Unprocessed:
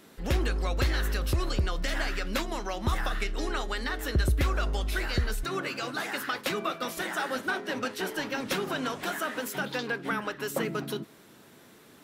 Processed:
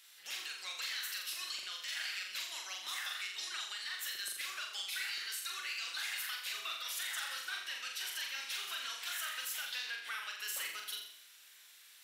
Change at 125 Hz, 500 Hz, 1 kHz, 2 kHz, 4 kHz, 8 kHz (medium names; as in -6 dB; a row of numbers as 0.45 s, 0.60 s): under -40 dB, -29.0 dB, -14.5 dB, -7.5 dB, -0.5 dB, 0.0 dB